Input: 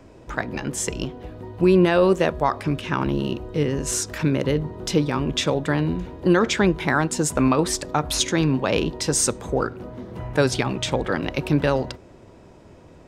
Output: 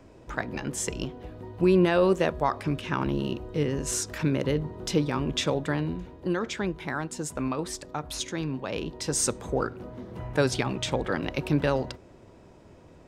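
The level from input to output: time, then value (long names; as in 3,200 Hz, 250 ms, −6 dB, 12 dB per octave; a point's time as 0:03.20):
0:05.55 −4.5 dB
0:06.39 −11 dB
0:08.74 −11 dB
0:09.28 −4.5 dB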